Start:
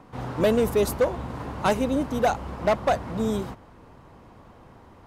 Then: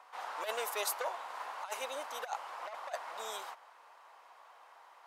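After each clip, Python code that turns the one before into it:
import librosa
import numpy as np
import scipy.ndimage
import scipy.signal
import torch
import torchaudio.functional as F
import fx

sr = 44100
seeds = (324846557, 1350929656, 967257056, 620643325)

y = scipy.signal.sosfilt(scipy.signal.butter(4, 740.0, 'highpass', fs=sr, output='sos'), x)
y = fx.over_compress(y, sr, threshold_db=-30.0, ratio=-0.5)
y = y * 10.0 ** (-5.0 / 20.0)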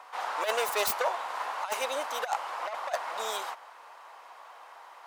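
y = fx.self_delay(x, sr, depth_ms=0.063)
y = y * 10.0 ** (8.5 / 20.0)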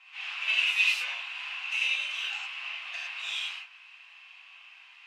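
y = fx.ladder_bandpass(x, sr, hz=2800.0, resonance_pct=80)
y = fx.rev_gated(y, sr, seeds[0], gate_ms=140, shape='flat', drr_db=-7.0)
y = y * 10.0 ** (5.0 / 20.0)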